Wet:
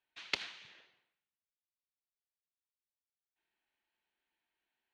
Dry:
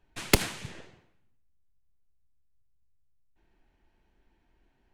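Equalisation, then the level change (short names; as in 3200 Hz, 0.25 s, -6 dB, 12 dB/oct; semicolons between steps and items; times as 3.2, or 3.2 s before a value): band-pass 5000 Hz, Q 1.6; air absorption 270 m; bell 5100 Hz -7 dB 0.33 oct; +4.5 dB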